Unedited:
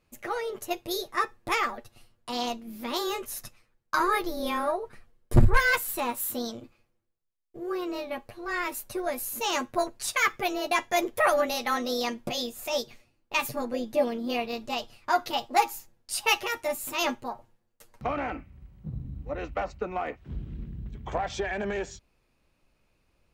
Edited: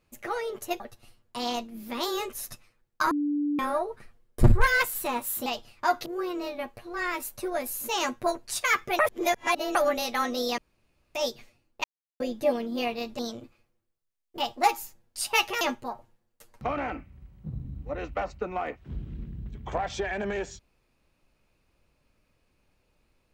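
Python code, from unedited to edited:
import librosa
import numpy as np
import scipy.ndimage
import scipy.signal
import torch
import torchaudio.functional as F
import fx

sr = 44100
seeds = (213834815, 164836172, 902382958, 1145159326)

y = fx.edit(x, sr, fx.cut(start_s=0.8, length_s=0.93),
    fx.bleep(start_s=4.04, length_s=0.48, hz=292.0, db=-24.0),
    fx.swap(start_s=6.39, length_s=1.19, other_s=14.71, other_length_s=0.6),
    fx.reverse_span(start_s=10.51, length_s=0.76),
    fx.room_tone_fill(start_s=12.1, length_s=0.57),
    fx.silence(start_s=13.36, length_s=0.36),
    fx.cut(start_s=16.54, length_s=0.47), tone=tone)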